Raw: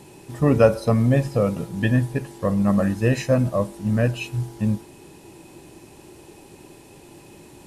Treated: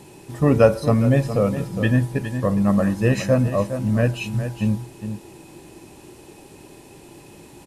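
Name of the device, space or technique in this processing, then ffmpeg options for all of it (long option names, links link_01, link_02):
ducked delay: -filter_complex "[0:a]asplit=3[link_01][link_02][link_03];[link_02]adelay=411,volume=-9dB[link_04];[link_03]apad=whole_len=356097[link_05];[link_04][link_05]sidechaincompress=threshold=-21dB:ratio=8:attack=16:release=245[link_06];[link_01][link_06]amix=inputs=2:normalize=0,volume=1dB"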